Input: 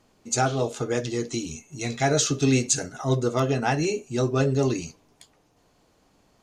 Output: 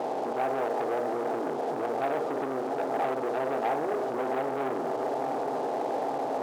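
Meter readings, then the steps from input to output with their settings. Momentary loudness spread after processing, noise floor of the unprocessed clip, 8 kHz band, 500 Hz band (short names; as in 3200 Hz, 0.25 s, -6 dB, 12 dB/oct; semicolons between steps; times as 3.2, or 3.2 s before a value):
2 LU, -64 dBFS, under -25 dB, -1.0 dB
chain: per-bin compression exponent 0.4; compressor 4:1, threshold -23 dBFS, peak gain reduction 8.5 dB; steep low-pass 1000 Hz 48 dB/oct; swung echo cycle 0.879 s, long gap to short 3:1, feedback 57%, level -10 dB; sample leveller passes 3; limiter -16.5 dBFS, peak gain reduction 3.5 dB; HPF 520 Hz 12 dB/oct; gain -3 dB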